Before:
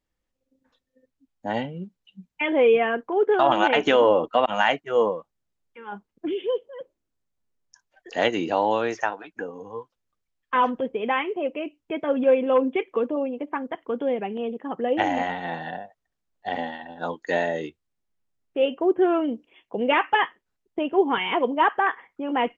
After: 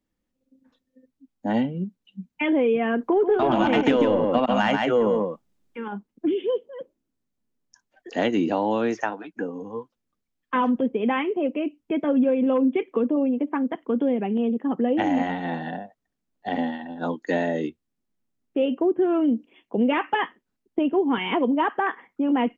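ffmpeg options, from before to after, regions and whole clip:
-filter_complex "[0:a]asettb=1/sr,asplit=3[a][b][c];[a]atrim=end=3.014[d];[b]atrim=start=3.01:end=5.88,asetpts=PTS-STARTPTS,afade=t=in:d=0.004:c=qsin,afade=t=out:st=2.866:d=0.004:c=qsin,acontrast=66,aecho=1:1:137:0.596,atrim=end_sample=126567[e];[c]atrim=start=5.876[f];[d][e]acrossfade=d=0.004:c1=hsin:c2=qsin[g];[g][f]acrossfade=d=0.004:c1=qsin:c2=hsin,equalizer=f=240:w=1.2:g=12,acrossover=split=160[h][i];[i]acompressor=threshold=-17dB:ratio=6[j];[h][j]amix=inputs=2:normalize=0,volume=-1.5dB"

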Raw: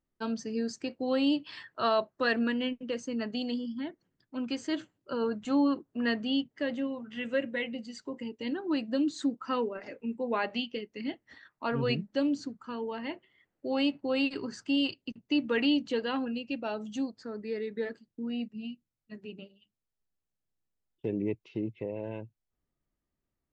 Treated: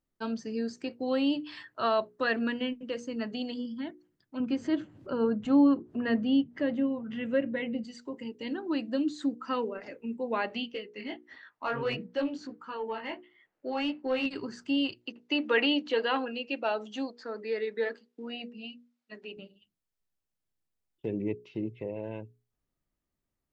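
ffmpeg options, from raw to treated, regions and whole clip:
-filter_complex "[0:a]asettb=1/sr,asplit=3[a][b][c];[a]atrim=end=4.404[d];[b]atrim=start=4.4:end=7.84,asetpts=PTS-STARTPTS,afade=t=in:d=0.004:c=qsin,afade=t=out:st=3.436:d=0.004:c=qsin,highpass=f=150:p=1,aemphasis=mode=reproduction:type=riaa,acompressor=mode=upward:threshold=-31dB:ratio=2.5:attack=3.2:release=140:knee=2.83:detection=peak[e];[c]atrim=start=7.836[f];[d][e]acrossfade=d=0.004:c1=hsin:c2=qsin[g];[g][f]acrossfade=d=0.004:c1=qsin:c2=hsin,asettb=1/sr,asplit=3[h][i][j];[h]atrim=end=10.744[k];[i]atrim=start=10.74:end=14.26,asetpts=PTS-STARTPTS,afade=t=in:d=0.004:c=qsin,afade=t=out:st=3.516:d=0.004:c=qsin,flanger=delay=15:depth=5.1:speed=1.5,asplit=2[l][m];[m]highpass=f=720:p=1,volume=13dB,asoftclip=type=tanh:threshold=-19dB[n];[l][n]amix=inputs=2:normalize=0,lowpass=f=3.6k:p=1,volume=-6dB,highshelf=f=4.5k:g=-6.5[o];[j]atrim=start=14.256[p];[k][o]acrossfade=d=0.004:c1=hsin:c2=qsin[q];[q][p]acrossfade=d=0.004:c1=qsin:c2=hsin,asettb=1/sr,asplit=3[r][s][t];[r]atrim=end=15.014[u];[s]atrim=start=15.01:end=19.37,asetpts=PTS-STARTPTS,afade=t=in:d=0.004:c=qsin,afade=t=out:st=4.356:d=0.004:c=qsin,highpass=430,lowpass=5.2k,acontrast=58[v];[t]atrim=start=19.366[w];[u][v]acrossfade=d=0.004:c1=hsin:c2=qsin[x];[x][w]acrossfade=d=0.004:c1=qsin:c2=hsin,acrossover=split=3900[y][z];[z]acompressor=threshold=-50dB:ratio=4:attack=1:release=60[aa];[y][aa]amix=inputs=2:normalize=0,bandreject=f=60:t=h:w=6,bandreject=f=120:t=h:w=6,bandreject=f=180:t=h:w=6,bandreject=f=240:t=h:w=6,bandreject=f=300:t=h:w=6,bandreject=f=360:t=h:w=6,bandreject=f=420:t=h:w=6,bandreject=f=480:t=h:w=6"

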